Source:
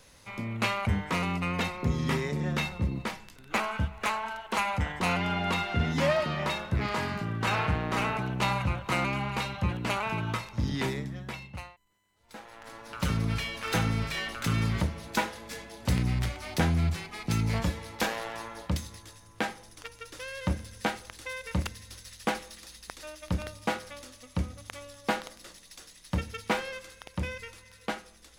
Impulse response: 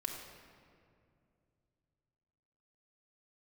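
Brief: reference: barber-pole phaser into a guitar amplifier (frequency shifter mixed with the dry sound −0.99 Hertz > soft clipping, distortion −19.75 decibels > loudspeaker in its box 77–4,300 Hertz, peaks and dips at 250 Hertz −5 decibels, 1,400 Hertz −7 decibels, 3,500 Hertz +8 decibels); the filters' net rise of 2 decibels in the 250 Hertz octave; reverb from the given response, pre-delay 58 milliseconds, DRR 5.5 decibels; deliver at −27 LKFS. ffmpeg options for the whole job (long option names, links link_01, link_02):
-filter_complex "[0:a]equalizer=frequency=250:width_type=o:gain=5.5,asplit=2[link_01][link_02];[1:a]atrim=start_sample=2205,adelay=58[link_03];[link_02][link_03]afir=irnorm=-1:irlink=0,volume=-6dB[link_04];[link_01][link_04]amix=inputs=2:normalize=0,asplit=2[link_05][link_06];[link_06]afreqshift=-0.99[link_07];[link_05][link_07]amix=inputs=2:normalize=1,asoftclip=threshold=-20dB,highpass=77,equalizer=frequency=250:width_type=q:width=4:gain=-5,equalizer=frequency=1400:width_type=q:width=4:gain=-7,equalizer=frequency=3500:width_type=q:width=4:gain=8,lowpass=frequency=4300:width=0.5412,lowpass=frequency=4300:width=1.3066,volume=7dB"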